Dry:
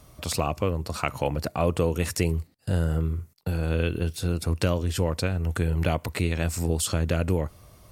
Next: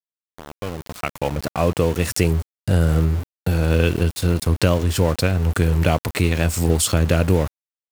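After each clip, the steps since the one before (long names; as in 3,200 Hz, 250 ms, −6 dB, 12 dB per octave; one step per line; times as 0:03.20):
fade in at the beginning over 2.38 s
automatic gain control gain up to 9 dB
centre clipping without the shift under −27.5 dBFS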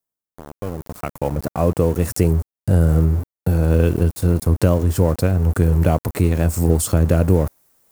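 parametric band 3,200 Hz −14 dB 2.2 octaves
reversed playback
upward compression, threshold −33 dBFS
reversed playback
level +2.5 dB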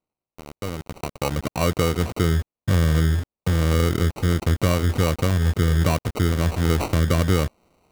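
in parallel at −2 dB: brickwall limiter −9 dBFS, peak gain reduction 7.5 dB
on the sum: decimation without filtering 26×
level −7.5 dB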